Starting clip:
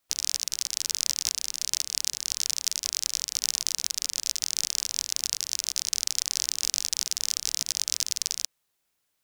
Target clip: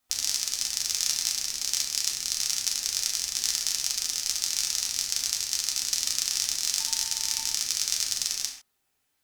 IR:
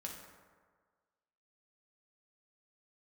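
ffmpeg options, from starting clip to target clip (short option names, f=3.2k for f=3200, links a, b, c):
-filter_complex "[0:a]asettb=1/sr,asplit=3[a][b][c];[a]atrim=end=6.804[d];[b]atrim=start=6.8:end=7.39,asetpts=PTS-STARTPTS,afade=t=in:d=0.004:c=qsin,afade=t=out:st=0.586:d=0.004:c=qsin,aeval=exprs='val(0)+0.00708*sin(2*PI*900*n/s)':c=same[e];[c]atrim=start=7.386[f];[d][e]acrossfade=d=0.004:c1=hsin:c2=qsin[g];[g][f]acrossfade=d=0.004:c1=qsin:c2=hsin,lowshelf=f=82:g=6.5[h];[1:a]atrim=start_sample=2205,afade=t=out:st=0.28:d=0.01,atrim=end_sample=12789,asetrate=61740,aresample=44100[i];[h][i]afir=irnorm=-1:irlink=0,volume=7.5dB"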